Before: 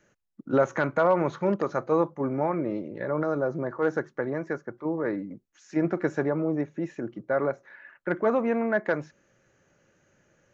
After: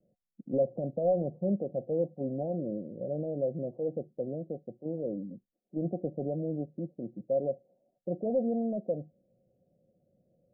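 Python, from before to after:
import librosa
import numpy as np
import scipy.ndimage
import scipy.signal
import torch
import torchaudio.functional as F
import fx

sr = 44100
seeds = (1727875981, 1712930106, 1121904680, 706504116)

p1 = 10.0 ** (-20.0 / 20.0) * (np.abs((x / 10.0 ** (-20.0 / 20.0) + 3.0) % 4.0 - 2.0) - 1.0)
p2 = x + (p1 * librosa.db_to_amplitude(-7.0))
p3 = scipy.signal.sosfilt(scipy.signal.cheby1(6, 9, 750.0, 'lowpass', fs=sr, output='sos'), p2)
y = p3 * librosa.db_to_amplitude(-3.5)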